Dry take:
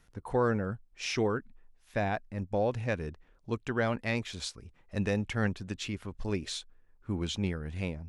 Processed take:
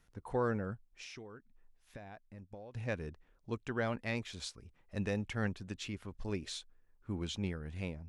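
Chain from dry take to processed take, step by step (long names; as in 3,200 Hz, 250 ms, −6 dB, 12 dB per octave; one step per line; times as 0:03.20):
0:00.74–0:02.75: downward compressor 8 to 1, threshold −42 dBFS, peak gain reduction 17.5 dB
level −5.5 dB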